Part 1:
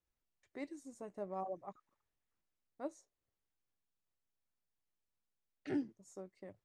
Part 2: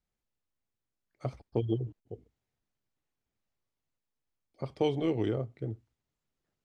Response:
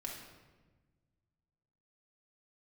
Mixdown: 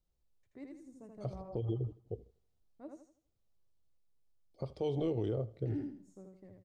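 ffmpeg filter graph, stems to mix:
-filter_complex "[0:a]lowshelf=frequency=240:gain=9,volume=-12dB,asplit=2[link_01][link_02];[link_02]volume=-3.5dB[link_03];[1:a]equalizer=frequency=125:width_type=o:width=1:gain=-3,equalizer=frequency=250:width_type=o:width=1:gain=-5,equalizer=frequency=500:width_type=o:width=1:gain=5,equalizer=frequency=2000:width_type=o:width=1:gain=-8,equalizer=frequency=4000:width_type=o:width=1:gain=4,volume=-3.5dB,asplit=2[link_04][link_05];[link_05]volume=-22.5dB[link_06];[link_03][link_06]amix=inputs=2:normalize=0,aecho=0:1:81|162|243|324|405:1|0.33|0.109|0.0359|0.0119[link_07];[link_01][link_04][link_07]amix=inputs=3:normalize=0,lowshelf=frequency=250:gain=11.5,alimiter=level_in=2dB:limit=-24dB:level=0:latency=1:release=150,volume=-2dB"

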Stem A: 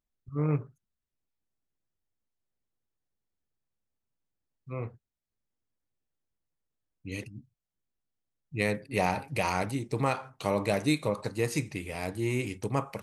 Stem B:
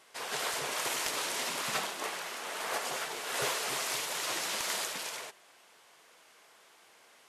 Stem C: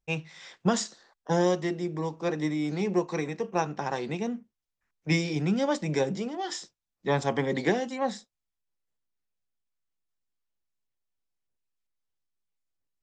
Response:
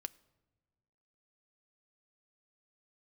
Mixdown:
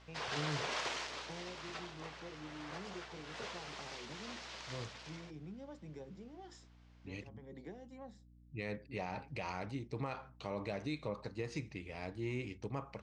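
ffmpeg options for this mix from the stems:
-filter_complex "[0:a]aeval=exprs='val(0)+0.00282*(sin(2*PI*60*n/s)+sin(2*PI*2*60*n/s)/2+sin(2*PI*3*60*n/s)/3+sin(2*PI*4*60*n/s)/4+sin(2*PI*5*60*n/s)/5)':channel_layout=same,volume=-9.5dB,asplit=2[link_01][link_02];[1:a]volume=-2dB,afade=type=out:start_time=0.74:duration=0.53:silence=0.281838[link_03];[2:a]tiltshelf=frequency=870:gain=5,acompressor=threshold=-33dB:ratio=2.5,volume=-17.5dB[link_04];[link_02]apad=whole_len=574451[link_05];[link_04][link_05]sidechaincompress=threshold=-56dB:ratio=5:attack=33:release=266[link_06];[link_01][link_03]amix=inputs=2:normalize=0,lowpass=frequency=5700:width=0.5412,lowpass=frequency=5700:width=1.3066,alimiter=level_in=4dB:limit=-24dB:level=0:latency=1:release=58,volume=-4dB,volume=0dB[link_07];[link_06][link_07]amix=inputs=2:normalize=0"

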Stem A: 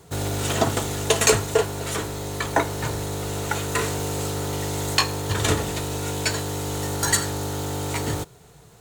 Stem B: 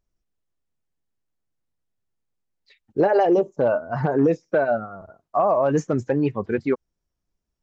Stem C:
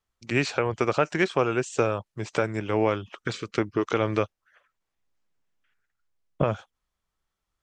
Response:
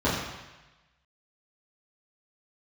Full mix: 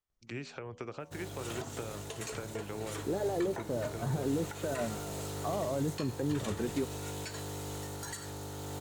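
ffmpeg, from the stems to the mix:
-filter_complex "[0:a]dynaudnorm=framelen=280:gausssize=3:maxgain=8dB,alimiter=limit=-11.5dB:level=0:latency=1:release=143,adelay=1000,volume=-18.5dB[link_01];[1:a]adelay=100,volume=-5.5dB[link_02];[2:a]bandreject=frequency=81.09:width_type=h:width=4,bandreject=frequency=162.18:width_type=h:width=4,bandreject=frequency=243.27:width_type=h:width=4,bandreject=frequency=324.36:width_type=h:width=4,bandreject=frequency=405.45:width_type=h:width=4,bandreject=frequency=486.54:width_type=h:width=4,bandreject=frequency=567.63:width_type=h:width=4,bandreject=frequency=648.72:width_type=h:width=4,bandreject=frequency=729.81:width_type=h:width=4,bandreject=frequency=810.9:width_type=h:width=4,bandreject=frequency=891.99:width_type=h:width=4,bandreject=frequency=973.08:width_type=h:width=4,bandreject=frequency=1054.17:width_type=h:width=4,bandreject=frequency=1135.26:width_type=h:width=4,acompressor=threshold=-27dB:ratio=2,volume=-10.5dB[link_03];[link_02][link_03]amix=inputs=2:normalize=0,acrossover=split=390[link_04][link_05];[link_05]acompressor=threshold=-44dB:ratio=2.5[link_06];[link_04][link_06]amix=inputs=2:normalize=0,alimiter=level_in=0.5dB:limit=-24dB:level=0:latency=1:release=94,volume=-0.5dB,volume=0dB[link_07];[link_01][link_07]amix=inputs=2:normalize=0"

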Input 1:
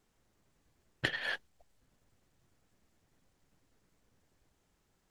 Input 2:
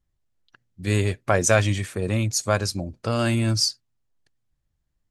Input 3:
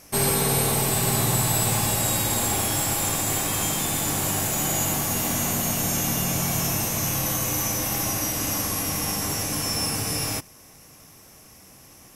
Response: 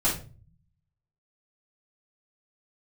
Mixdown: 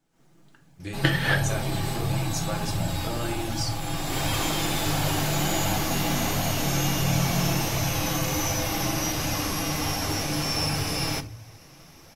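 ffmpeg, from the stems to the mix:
-filter_complex "[0:a]highpass=frequency=140:width=0.5412,highpass=frequency=140:width=1.3066,lowshelf=frequency=230:gain=12,volume=0dB,asplit=2[link_01][link_02];[link_02]volume=-12dB[link_03];[1:a]acompressor=threshold=-25dB:ratio=6,volume=-14.5dB,asplit=3[link_04][link_05][link_06];[link_05]volume=-12.5dB[link_07];[2:a]highshelf=frequency=6100:width_type=q:width=1.5:gain=-8,adelay=800,volume=-8dB,asplit=2[link_08][link_09];[link_09]volume=-20dB[link_10];[link_06]apad=whole_len=571260[link_11];[link_08][link_11]sidechaincompress=threshold=-55dB:ratio=8:attack=7.2:release=509[link_12];[3:a]atrim=start_sample=2205[link_13];[link_03][link_07][link_10]amix=inputs=3:normalize=0[link_14];[link_14][link_13]afir=irnorm=-1:irlink=0[link_15];[link_01][link_04][link_12][link_15]amix=inputs=4:normalize=0,dynaudnorm=framelen=110:gausssize=3:maxgain=12dB,flanger=delay=1.2:depth=4.9:regen=-43:speed=1.4:shape=sinusoidal"

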